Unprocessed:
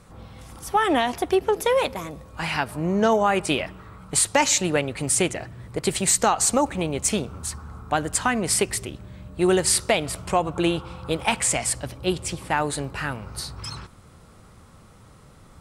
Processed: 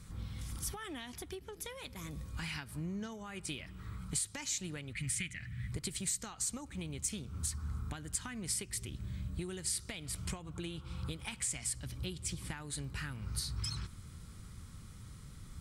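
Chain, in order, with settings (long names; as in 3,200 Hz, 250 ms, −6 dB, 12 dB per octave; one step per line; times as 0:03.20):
0:04.93–0:05.72: drawn EQ curve 210 Hz 0 dB, 380 Hz −15 dB, 970 Hz −11 dB, 2,000 Hz +10 dB, 4,900 Hz −5 dB
downward compressor 6 to 1, threshold −34 dBFS, peak gain reduction 18 dB
guitar amp tone stack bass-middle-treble 6-0-2
notch filter 2,700 Hz, Q 18
level +14.5 dB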